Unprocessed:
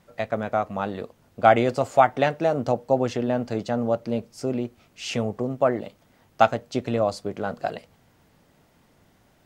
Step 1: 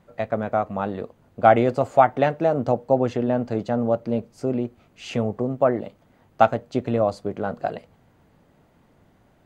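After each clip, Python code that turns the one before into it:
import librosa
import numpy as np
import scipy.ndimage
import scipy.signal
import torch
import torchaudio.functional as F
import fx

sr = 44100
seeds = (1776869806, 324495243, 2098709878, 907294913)

y = fx.high_shelf(x, sr, hz=2300.0, db=-10.5)
y = fx.notch(y, sr, hz=5400.0, q=12.0)
y = y * librosa.db_to_amplitude(2.5)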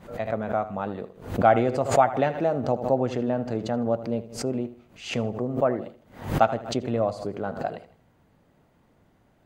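y = fx.echo_feedback(x, sr, ms=79, feedback_pct=35, wet_db=-14.5)
y = fx.pre_swell(y, sr, db_per_s=120.0)
y = y * librosa.db_to_amplitude(-4.0)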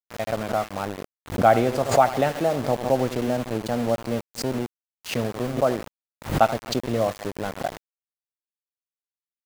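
y = fx.dynamic_eq(x, sr, hz=4700.0, q=1.8, threshold_db=-48.0, ratio=4.0, max_db=5)
y = np.where(np.abs(y) >= 10.0 ** (-30.5 / 20.0), y, 0.0)
y = y * librosa.db_to_amplitude(1.5)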